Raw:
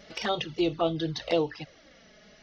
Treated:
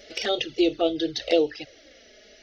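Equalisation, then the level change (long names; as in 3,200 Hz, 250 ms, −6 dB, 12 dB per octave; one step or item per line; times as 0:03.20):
low-shelf EQ 120 Hz −5.5 dB
phaser with its sweep stopped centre 420 Hz, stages 4
+6.5 dB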